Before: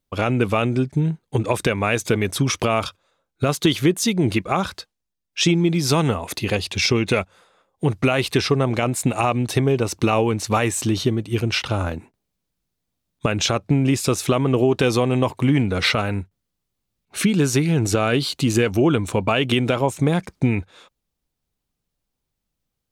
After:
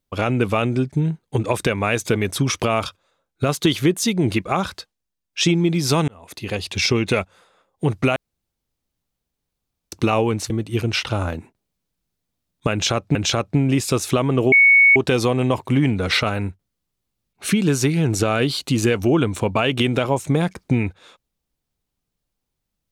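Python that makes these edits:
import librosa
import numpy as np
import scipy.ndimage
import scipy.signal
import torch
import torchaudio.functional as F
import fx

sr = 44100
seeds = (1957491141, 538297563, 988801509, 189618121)

y = fx.edit(x, sr, fx.fade_in_span(start_s=6.08, length_s=0.7),
    fx.room_tone_fill(start_s=8.16, length_s=1.76),
    fx.cut(start_s=10.5, length_s=0.59),
    fx.repeat(start_s=13.31, length_s=0.43, count=2),
    fx.insert_tone(at_s=14.68, length_s=0.44, hz=2220.0, db=-8.5), tone=tone)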